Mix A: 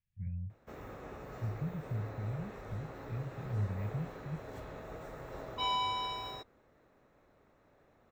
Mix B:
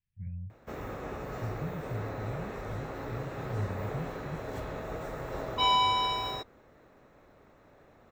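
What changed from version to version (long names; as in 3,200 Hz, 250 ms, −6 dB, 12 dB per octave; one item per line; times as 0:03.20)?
background +8.0 dB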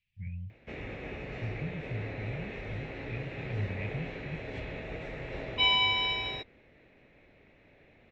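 background: add head-to-tape spacing loss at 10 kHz 36 dB
master: add high shelf with overshoot 1,700 Hz +11.5 dB, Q 3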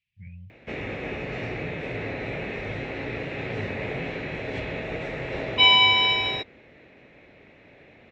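background +9.0 dB
master: add high-pass filter 110 Hz 6 dB per octave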